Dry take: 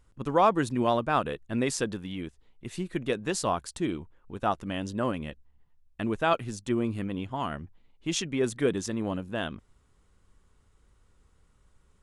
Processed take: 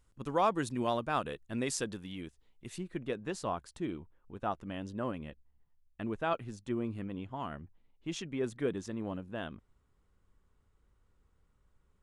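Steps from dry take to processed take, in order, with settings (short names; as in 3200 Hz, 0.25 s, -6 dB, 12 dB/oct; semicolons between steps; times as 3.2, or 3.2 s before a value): high shelf 3600 Hz +5 dB, from 2.78 s -8.5 dB; gain -7 dB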